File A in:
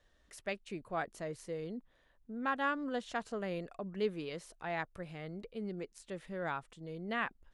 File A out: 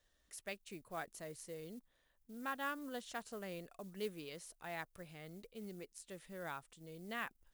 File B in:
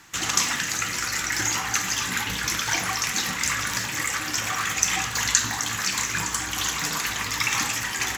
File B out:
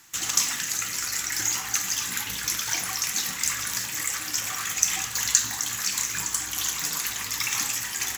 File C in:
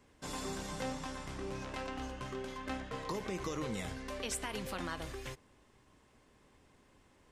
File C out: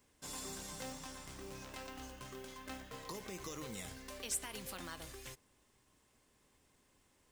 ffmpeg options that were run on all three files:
ffmpeg -i in.wav -af "acrusher=bits=7:mode=log:mix=0:aa=0.000001,crystalizer=i=2.5:c=0,volume=-8.5dB" out.wav

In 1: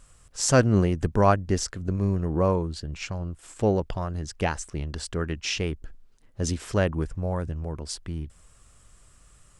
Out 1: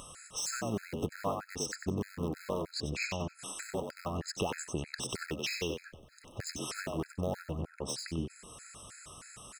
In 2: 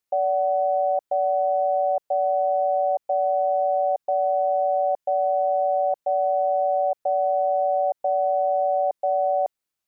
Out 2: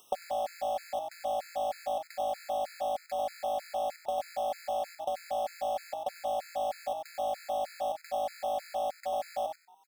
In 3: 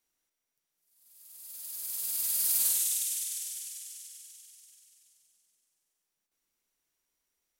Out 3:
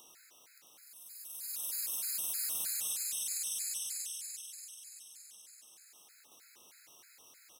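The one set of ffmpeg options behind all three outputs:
ffmpeg -i in.wav -filter_complex "[0:a]highpass=frequency=310:poles=1,highshelf=frequency=10000:gain=-4.5,asplit=2[link_01][link_02];[link_02]aeval=exprs='(mod(14.1*val(0)+1,2)-1)/14.1':channel_layout=same,volume=-10dB[link_03];[link_01][link_03]amix=inputs=2:normalize=0,acompressor=threshold=-38dB:ratio=8,acrossover=split=3700[link_04][link_05];[link_05]asoftclip=type=hard:threshold=-38dB[link_06];[link_04][link_06]amix=inputs=2:normalize=0,asplit=5[link_07][link_08][link_09][link_10][link_11];[link_08]adelay=94,afreqshift=53,volume=-5.5dB[link_12];[link_09]adelay=188,afreqshift=106,volume=-15.7dB[link_13];[link_10]adelay=282,afreqshift=159,volume=-25.8dB[link_14];[link_11]adelay=376,afreqshift=212,volume=-36dB[link_15];[link_07][link_12][link_13][link_14][link_15]amix=inputs=5:normalize=0,acompressor=mode=upward:threshold=-49dB:ratio=2.5,afftfilt=real='re*gt(sin(2*PI*3.2*pts/sr)*(1-2*mod(floor(b*sr/1024/1300),2)),0)':imag='im*gt(sin(2*PI*3.2*pts/sr)*(1-2*mod(floor(b*sr/1024/1300),2)),0)':win_size=1024:overlap=0.75,volume=7.5dB" out.wav

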